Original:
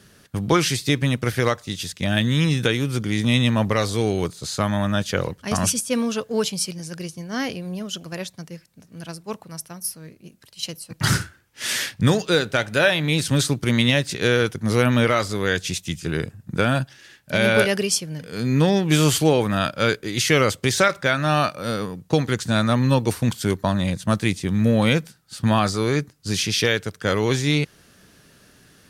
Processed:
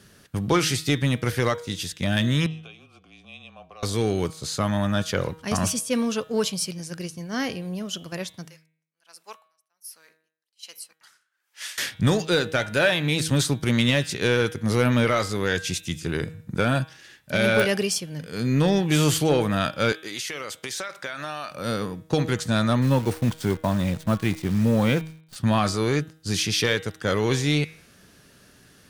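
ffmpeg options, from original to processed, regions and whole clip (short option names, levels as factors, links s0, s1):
-filter_complex "[0:a]asettb=1/sr,asplit=3[s0][s1][s2];[s0]atrim=end=2.464[s3];[s1]atrim=start=2.46:end=3.83,asetpts=PTS-STARTPTS,afade=t=in:d=0.004:c=qsin,afade=t=out:st=1.366:d=0.004:c=qsin,acrossover=split=200|3000[s4][s5][s6];[s5]acompressor=threshold=0.01:ratio=2:attack=3.2:release=140:knee=2.83:detection=peak[s7];[s4][s7][s6]amix=inputs=3:normalize=0,afreqshift=-28,asplit=3[s8][s9][s10];[s8]bandpass=f=730:t=q:w=8,volume=1[s11];[s9]bandpass=f=1090:t=q:w=8,volume=0.501[s12];[s10]bandpass=f=2440:t=q:w=8,volume=0.355[s13];[s11][s12][s13]amix=inputs=3:normalize=0[s14];[s2]atrim=start=3.826[s15];[s3][s14]acrossfade=d=0.004:c1=hsin:c2=qsin[s16];[s16][s15]acrossfade=d=0.004:c1=qsin:c2=hsin,asettb=1/sr,asplit=3[s17][s18][s19];[s17]atrim=end=8.484[s20];[s18]atrim=start=8.48:end=11.78,asetpts=PTS-STARTPTS,afade=t=in:d=0.004:c=qsin,afade=t=out:st=3.296:d=0.004:c=qsin,highpass=920,aeval=exprs='val(0)*pow(10,-36*(0.5-0.5*cos(2*PI*1.3*n/s))/20)':c=same[s21];[s19]atrim=start=11.776[s22];[s20][s21]acrossfade=d=0.004:c1=hsin:c2=qsin[s23];[s23][s22]acrossfade=d=0.004:c1=qsin:c2=hsin,asettb=1/sr,asplit=3[s24][s25][s26];[s24]atrim=end=19.924[s27];[s25]atrim=start=19.92:end=21.51,asetpts=PTS-STARTPTS,afade=t=in:d=0.004:c=qsin,afade=t=out:st=1.586:d=0.004:c=qsin,highpass=f=670:p=1,acompressor=threshold=0.0501:ratio=10:attack=3.2:release=140:knee=1:detection=peak[s28];[s26]atrim=start=21.506[s29];[s27][s28]acrossfade=d=0.004:c1=hsin:c2=qsin[s30];[s30][s29]acrossfade=d=0.004:c1=qsin:c2=hsin,asettb=1/sr,asplit=3[s31][s32][s33];[s31]atrim=end=22.824[s34];[s32]atrim=start=22.82:end=25.36,asetpts=PTS-STARTPTS,afade=t=in:d=0.004:c=qsin,afade=t=out:st=2.536:d=0.004:c=qsin,highshelf=f=3500:g=-9.5,acrusher=bits=7:dc=4:mix=0:aa=0.000001[s35];[s33]atrim=start=25.356[s36];[s34][s35]acrossfade=d=0.004:c1=hsin:c2=qsin[s37];[s37][s36]acrossfade=d=0.004:c1=qsin:c2=hsin,deesser=0.35,bandreject=f=158.7:t=h:w=4,bandreject=f=317.4:t=h:w=4,bandreject=f=476.1:t=h:w=4,bandreject=f=634.8:t=h:w=4,bandreject=f=793.5:t=h:w=4,bandreject=f=952.2:t=h:w=4,bandreject=f=1110.9:t=h:w=4,bandreject=f=1269.6:t=h:w=4,bandreject=f=1428.3:t=h:w=4,bandreject=f=1587:t=h:w=4,bandreject=f=1745.7:t=h:w=4,bandreject=f=1904.4:t=h:w=4,bandreject=f=2063.1:t=h:w=4,bandreject=f=2221.8:t=h:w=4,bandreject=f=2380.5:t=h:w=4,bandreject=f=2539.2:t=h:w=4,bandreject=f=2697.9:t=h:w=4,bandreject=f=2856.6:t=h:w=4,bandreject=f=3015.3:t=h:w=4,bandreject=f=3174:t=h:w=4,bandreject=f=3332.7:t=h:w=4,bandreject=f=3491.4:t=h:w=4,bandreject=f=3650.1:t=h:w=4,bandreject=f=3808.8:t=h:w=4,bandreject=f=3967.5:t=h:w=4,acontrast=79,volume=0.398"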